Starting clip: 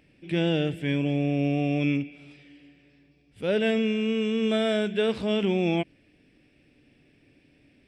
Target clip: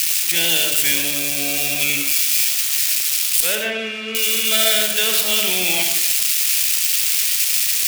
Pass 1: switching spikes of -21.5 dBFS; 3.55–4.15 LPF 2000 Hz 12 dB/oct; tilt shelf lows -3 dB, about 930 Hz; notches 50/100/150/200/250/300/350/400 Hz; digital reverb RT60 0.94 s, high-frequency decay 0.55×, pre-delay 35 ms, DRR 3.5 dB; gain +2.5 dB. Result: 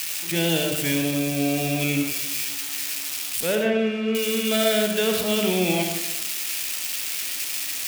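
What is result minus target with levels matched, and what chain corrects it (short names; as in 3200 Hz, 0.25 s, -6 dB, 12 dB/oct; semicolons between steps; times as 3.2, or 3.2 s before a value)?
1000 Hz band +8.0 dB
switching spikes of -21.5 dBFS; 3.55–4.15 LPF 2000 Hz 12 dB/oct; tilt shelf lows -14 dB, about 930 Hz; notches 50/100/150/200/250/300/350/400 Hz; digital reverb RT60 0.94 s, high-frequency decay 0.55×, pre-delay 35 ms, DRR 3.5 dB; gain +2.5 dB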